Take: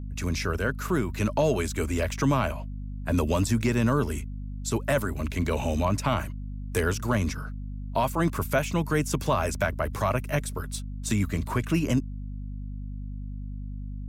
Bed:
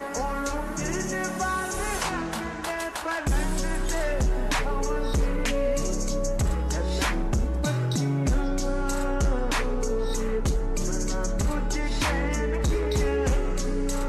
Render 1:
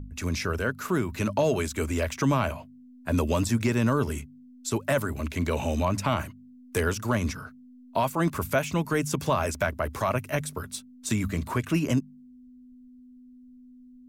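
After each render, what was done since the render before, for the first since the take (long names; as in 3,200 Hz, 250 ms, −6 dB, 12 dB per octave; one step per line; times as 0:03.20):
hum removal 50 Hz, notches 4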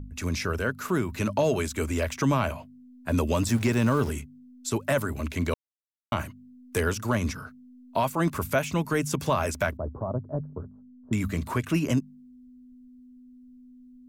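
0:03.47–0:04.10: converter with a step at zero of −36.5 dBFS
0:05.54–0:06.12: silence
0:09.77–0:11.13: Gaussian smoothing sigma 11 samples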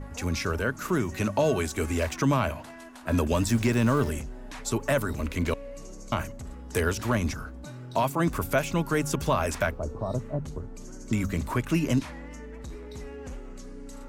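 mix in bed −16 dB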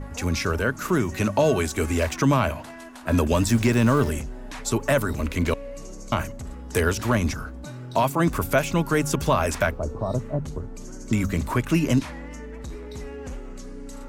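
level +4 dB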